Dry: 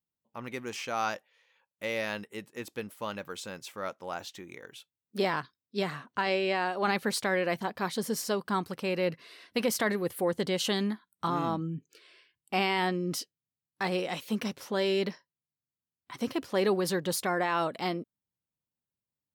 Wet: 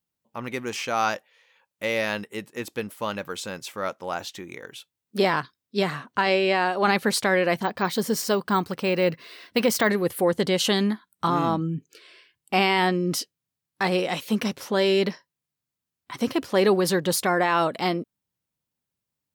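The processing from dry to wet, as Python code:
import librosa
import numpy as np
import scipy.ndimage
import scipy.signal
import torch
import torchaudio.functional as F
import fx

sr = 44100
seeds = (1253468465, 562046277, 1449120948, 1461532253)

y = fx.resample_bad(x, sr, factor=2, down='filtered', up='hold', at=(7.63, 9.89))
y = y * 10.0 ** (7.0 / 20.0)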